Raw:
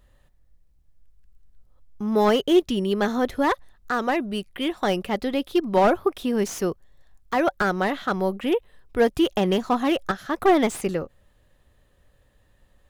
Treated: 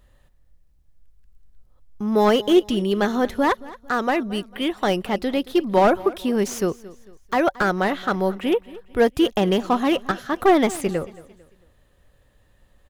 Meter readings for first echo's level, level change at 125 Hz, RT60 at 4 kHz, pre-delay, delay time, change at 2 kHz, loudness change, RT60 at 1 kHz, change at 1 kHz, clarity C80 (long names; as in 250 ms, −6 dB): −19.5 dB, +2.0 dB, no reverb audible, no reverb audible, 224 ms, +2.0 dB, +2.0 dB, no reverb audible, +2.0 dB, no reverb audible